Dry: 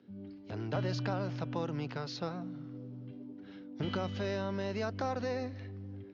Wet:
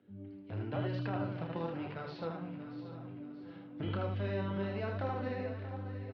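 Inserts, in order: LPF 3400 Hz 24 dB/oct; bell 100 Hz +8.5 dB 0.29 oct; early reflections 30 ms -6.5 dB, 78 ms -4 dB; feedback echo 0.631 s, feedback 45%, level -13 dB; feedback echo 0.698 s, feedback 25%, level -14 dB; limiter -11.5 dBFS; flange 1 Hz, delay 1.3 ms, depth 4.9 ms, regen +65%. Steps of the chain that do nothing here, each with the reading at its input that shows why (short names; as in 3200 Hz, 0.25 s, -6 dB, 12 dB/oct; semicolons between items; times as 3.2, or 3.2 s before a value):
limiter -11.5 dBFS: input peak -19.0 dBFS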